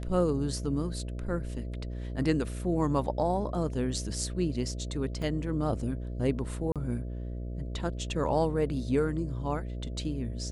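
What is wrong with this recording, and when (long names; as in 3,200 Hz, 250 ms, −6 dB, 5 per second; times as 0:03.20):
mains buzz 60 Hz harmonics 11 −36 dBFS
0:05.22: drop-out 2.5 ms
0:06.72–0:06.76: drop-out 37 ms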